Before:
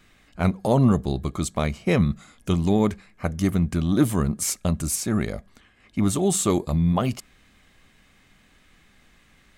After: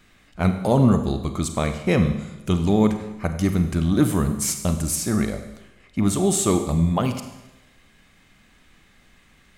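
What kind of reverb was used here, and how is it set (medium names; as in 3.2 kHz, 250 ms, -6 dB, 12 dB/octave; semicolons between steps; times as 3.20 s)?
Schroeder reverb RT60 1 s, combs from 33 ms, DRR 7.5 dB; trim +1 dB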